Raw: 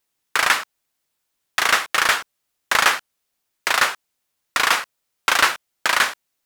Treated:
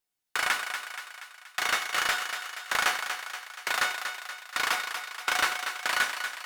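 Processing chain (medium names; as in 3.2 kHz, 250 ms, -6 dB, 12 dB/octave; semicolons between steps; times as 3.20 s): feedback comb 730 Hz, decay 0.34 s, mix 80%; thinning echo 238 ms, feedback 57%, high-pass 440 Hz, level -7 dB; trim +3 dB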